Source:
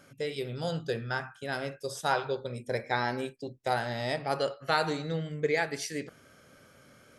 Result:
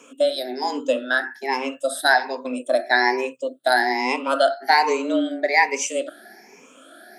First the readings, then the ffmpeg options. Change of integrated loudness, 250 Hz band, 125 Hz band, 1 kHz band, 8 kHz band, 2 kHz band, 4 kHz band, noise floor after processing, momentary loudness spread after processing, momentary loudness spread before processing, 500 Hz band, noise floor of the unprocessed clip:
+11.0 dB, +10.0 dB, under -25 dB, +11.5 dB, +12.5 dB, +13.5 dB, +10.5 dB, -50 dBFS, 8 LU, 8 LU, +9.5 dB, -59 dBFS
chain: -af "afftfilt=real='re*pow(10,21/40*sin(2*PI*(0.7*log(max(b,1)*sr/1024/100)/log(2)-(1.2)*(pts-256)/sr)))':imag='im*pow(10,21/40*sin(2*PI*(0.7*log(max(b,1)*sr/1024/100)/log(2)-(1.2)*(pts-256)/sr)))':win_size=1024:overlap=0.75,afreqshift=130,equalizer=f=88:w=1.4:g=-14.5,volume=6dB"

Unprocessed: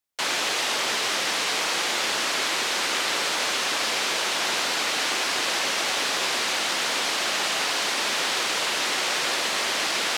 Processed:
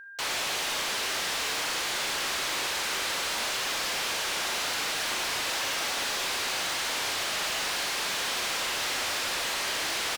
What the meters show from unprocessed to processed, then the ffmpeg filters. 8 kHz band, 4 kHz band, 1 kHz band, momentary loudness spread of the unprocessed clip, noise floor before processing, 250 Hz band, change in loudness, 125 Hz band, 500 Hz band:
-4.0 dB, -5.0 dB, -5.5 dB, 0 LU, -26 dBFS, -6.5 dB, -5.0 dB, -1.0 dB, -6.0 dB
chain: -filter_complex "[0:a]lowshelf=f=190:g=-10,areverse,acompressor=mode=upward:threshold=-29dB:ratio=2.5,areverse,aeval=exprs='val(0)+0.00794*sin(2*PI*1600*n/s)':c=same,volume=28dB,asoftclip=hard,volume=-28dB,asplit=2[a][b];[b]adelay=39,volume=-11dB[c];[a][c]amix=inputs=2:normalize=0,aecho=1:1:60|78:0.237|0.188,volume=-1dB"

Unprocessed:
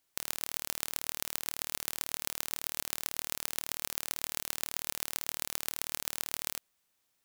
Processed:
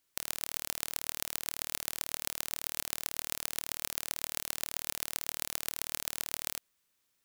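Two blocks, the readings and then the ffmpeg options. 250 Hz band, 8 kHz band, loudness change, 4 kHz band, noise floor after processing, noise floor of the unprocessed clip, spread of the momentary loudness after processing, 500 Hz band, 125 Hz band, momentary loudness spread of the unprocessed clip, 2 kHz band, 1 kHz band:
0.0 dB, 0.0 dB, 0.0 dB, 0.0 dB, -77 dBFS, -77 dBFS, 0 LU, -1.5 dB, 0.0 dB, 0 LU, 0.0 dB, -1.5 dB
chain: -af "equalizer=f=750:t=o:w=0.43:g=-6"

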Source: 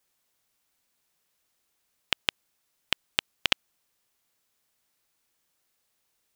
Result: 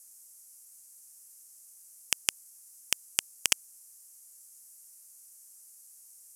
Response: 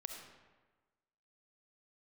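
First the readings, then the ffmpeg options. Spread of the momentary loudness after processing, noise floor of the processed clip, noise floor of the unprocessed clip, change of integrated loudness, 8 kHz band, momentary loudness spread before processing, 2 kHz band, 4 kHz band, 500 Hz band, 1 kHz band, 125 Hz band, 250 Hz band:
5 LU, -55 dBFS, -76 dBFS, -0.5 dB, +15.0 dB, 5 LU, -4.5 dB, -4.5 dB, -7.5 dB, -7.0 dB, -7.0 dB, -7.0 dB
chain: -af "lowpass=f=12k:w=0.5412,lowpass=f=12k:w=1.3066,aexciter=amount=11.3:drive=9:freq=5.6k,asoftclip=type=hard:threshold=-1dB,volume=-1dB"

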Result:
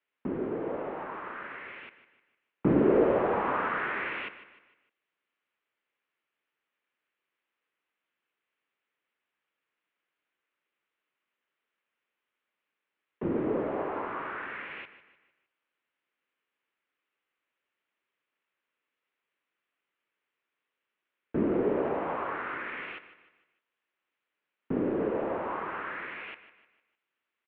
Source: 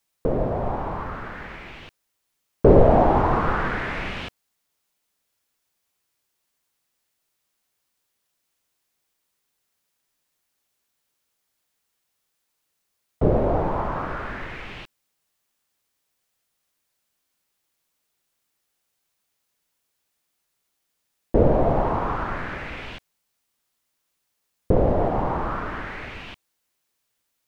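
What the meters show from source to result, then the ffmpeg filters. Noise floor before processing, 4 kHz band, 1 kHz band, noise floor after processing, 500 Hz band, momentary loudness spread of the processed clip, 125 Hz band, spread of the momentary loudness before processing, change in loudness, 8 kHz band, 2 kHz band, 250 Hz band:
-77 dBFS, -8.5 dB, -9.0 dB, under -85 dBFS, -7.5 dB, 16 LU, -15.0 dB, 19 LU, -8.0 dB, n/a, -3.0 dB, -5.0 dB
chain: -af "equalizer=f=1k:t=o:w=0.6:g=-8,aecho=1:1:152|304|456|608:0.2|0.0838|0.0352|0.0148,highpass=f=600:t=q:w=0.5412,highpass=f=600:t=q:w=1.307,lowpass=f=3.1k:t=q:w=0.5176,lowpass=f=3.1k:t=q:w=0.7071,lowpass=f=3.1k:t=q:w=1.932,afreqshift=-260"

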